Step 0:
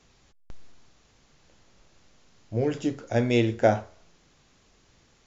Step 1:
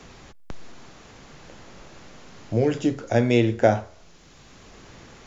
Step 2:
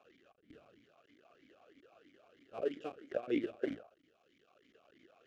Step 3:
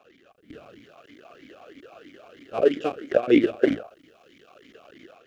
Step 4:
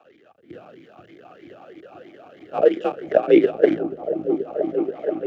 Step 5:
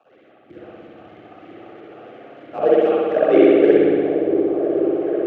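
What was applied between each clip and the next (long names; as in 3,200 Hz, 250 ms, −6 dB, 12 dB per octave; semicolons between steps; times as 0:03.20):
multiband upward and downward compressor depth 40%; level +5 dB
sub-harmonics by changed cycles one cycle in 2, muted; formant filter swept between two vowels a-i 3.1 Hz; level −4 dB
automatic gain control gain up to 8 dB; level +8.5 dB
frequency shifter +44 Hz; high-shelf EQ 2,900 Hz −12 dB; echo whose low-pass opens from repeat to repeat 481 ms, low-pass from 200 Hz, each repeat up 1 octave, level −3 dB; level +4 dB
spring reverb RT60 2.1 s, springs 59 ms, chirp 20 ms, DRR −7.5 dB; level −4.5 dB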